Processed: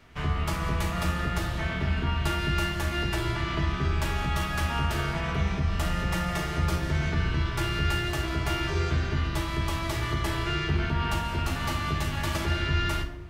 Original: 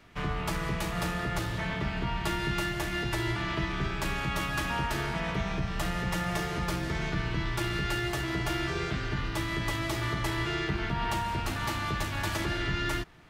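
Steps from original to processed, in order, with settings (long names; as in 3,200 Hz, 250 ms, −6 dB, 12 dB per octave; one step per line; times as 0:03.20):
parametric band 78 Hz +12 dB 0.34 octaves
on a send: convolution reverb RT60 1.1 s, pre-delay 3 ms, DRR 4 dB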